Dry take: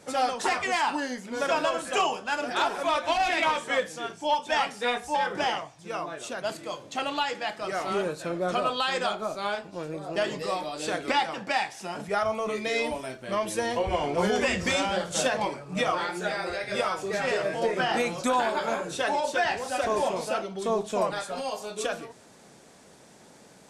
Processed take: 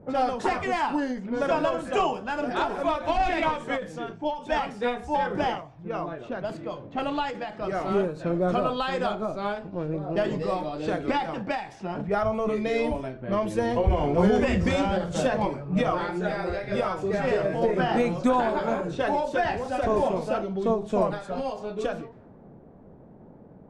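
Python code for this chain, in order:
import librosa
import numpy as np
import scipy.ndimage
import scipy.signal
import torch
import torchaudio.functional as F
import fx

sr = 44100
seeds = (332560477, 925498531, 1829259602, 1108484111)

y = fx.env_lowpass(x, sr, base_hz=800.0, full_db=-26.0)
y = fx.tilt_eq(y, sr, slope=-3.5)
y = fx.end_taper(y, sr, db_per_s=120.0)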